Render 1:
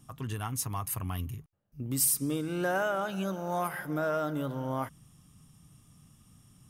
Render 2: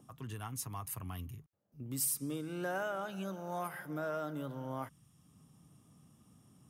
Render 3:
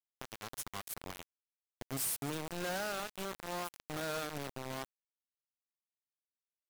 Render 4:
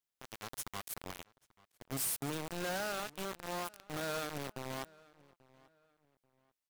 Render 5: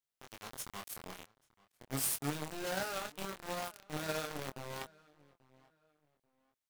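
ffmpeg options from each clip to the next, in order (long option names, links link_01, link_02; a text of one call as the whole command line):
ffmpeg -i in.wav -filter_complex "[0:a]highpass=63,acrossover=split=200|1000|4300[link_01][link_02][link_03][link_04];[link_02]acompressor=mode=upward:threshold=-49dB:ratio=2.5[link_05];[link_01][link_05][link_03][link_04]amix=inputs=4:normalize=0,volume=-7.5dB" out.wav
ffmpeg -i in.wav -af "acrusher=bits=5:mix=0:aa=0.000001,aeval=exprs='(mod(89.1*val(0)+1,2)-1)/89.1':channel_layout=same,acompressor=mode=upward:threshold=-50dB:ratio=2.5,volume=8.5dB" out.wav
ffmpeg -i in.wav -filter_complex "[0:a]alimiter=level_in=11.5dB:limit=-24dB:level=0:latency=1:release=107,volume=-11.5dB,asplit=2[link_01][link_02];[link_02]adelay=837,lowpass=frequency=3300:poles=1,volume=-23dB,asplit=2[link_03][link_04];[link_04]adelay=837,lowpass=frequency=3300:poles=1,volume=0.32[link_05];[link_01][link_03][link_05]amix=inputs=3:normalize=0,volume=4dB" out.wav
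ffmpeg -i in.wav -filter_complex "[0:a]flanger=delay=20:depth=7.1:speed=0.4,asplit=2[link_01][link_02];[link_02]acrusher=bits=5:mix=0:aa=0.000001,volume=-5dB[link_03];[link_01][link_03]amix=inputs=2:normalize=0,volume=1dB" out.wav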